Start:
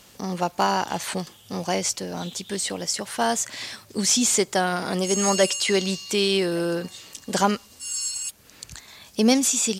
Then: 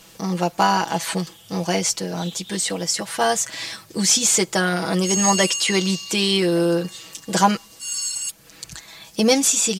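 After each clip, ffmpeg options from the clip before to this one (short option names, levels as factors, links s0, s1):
-af "aecho=1:1:6.1:0.72,volume=1.26"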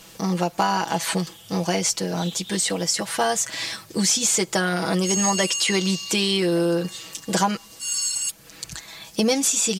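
-af "acompressor=threshold=0.1:ratio=3,volume=1.19"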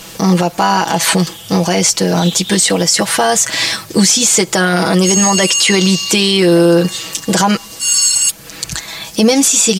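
-af "alimiter=level_in=5.31:limit=0.891:release=50:level=0:latency=1,volume=0.891"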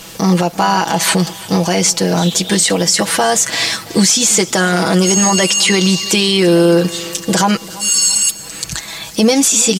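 -af "aecho=1:1:336|672|1008|1344:0.112|0.0527|0.0248|0.0116,volume=0.891"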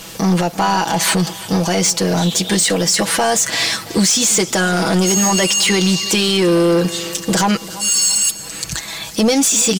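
-af "asoftclip=type=tanh:threshold=0.376"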